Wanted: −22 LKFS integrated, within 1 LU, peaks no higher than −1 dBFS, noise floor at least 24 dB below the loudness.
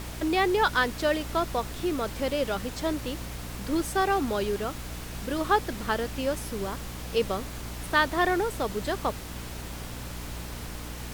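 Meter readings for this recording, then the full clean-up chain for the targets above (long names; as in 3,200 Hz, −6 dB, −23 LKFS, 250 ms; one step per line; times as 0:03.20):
mains hum 60 Hz; hum harmonics up to 300 Hz; level of the hum −37 dBFS; background noise floor −38 dBFS; target noise floor −53 dBFS; integrated loudness −29.0 LKFS; sample peak −9.5 dBFS; target loudness −22.0 LKFS
→ mains-hum notches 60/120/180/240/300 Hz
noise reduction from a noise print 15 dB
level +7 dB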